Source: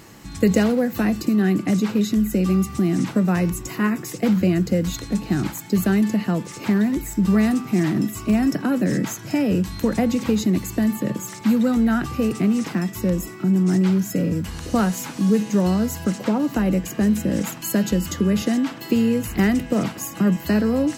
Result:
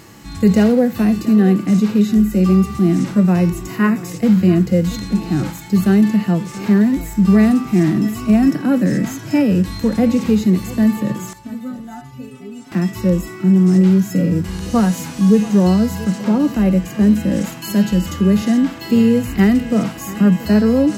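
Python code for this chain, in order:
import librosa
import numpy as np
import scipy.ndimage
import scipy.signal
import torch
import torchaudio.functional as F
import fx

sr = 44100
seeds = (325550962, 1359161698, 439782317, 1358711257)

y = fx.hpss(x, sr, part='percussive', gain_db=-12)
y = fx.stiff_resonator(y, sr, f0_hz=130.0, decay_s=0.46, stiffness=0.008, at=(11.33, 12.72))
y = y + 10.0 ** (-17.5 / 20.0) * np.pad(y, (int(682 * sr / 1000.0), 0))[:len(y)]
y = y * 10.0 ** (6.5 / 20.0)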